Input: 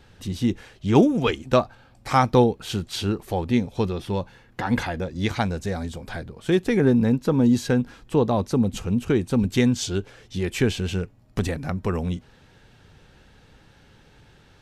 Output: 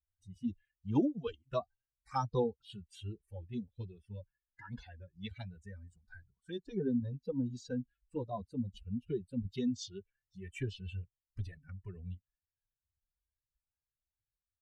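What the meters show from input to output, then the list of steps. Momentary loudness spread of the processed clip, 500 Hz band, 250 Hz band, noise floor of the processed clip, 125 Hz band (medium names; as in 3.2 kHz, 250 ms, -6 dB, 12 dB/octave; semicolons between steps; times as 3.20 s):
17 LU, -17.0 dB, -16.0 dB, under -85 dBFS, -16.5 dB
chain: expander on every frequency bin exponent 2; touch-sensitive phaser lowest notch 460 Hz, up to 2.1 kHz, full sweep at -23 dBFS; low-pass 8.5 kHz 24 dB/octave; endless flanger 2.3 ms +2.5 Hz; trim -7.5 dB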